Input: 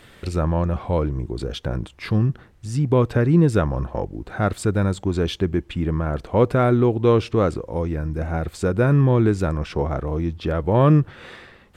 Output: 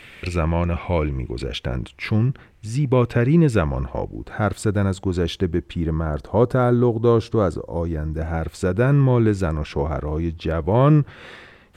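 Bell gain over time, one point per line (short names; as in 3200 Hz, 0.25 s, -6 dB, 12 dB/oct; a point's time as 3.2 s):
bell 2400 Hz 0.63 oct
1.38 s +15 dB
1.78 s +7.5 dB
3.74 s +7.5 dB
4.46 s -0.5 dB
5.42 s -0.5 dB
6.36 s -10 dB
7.74 s -10 dB
8.38 s +1.5 dB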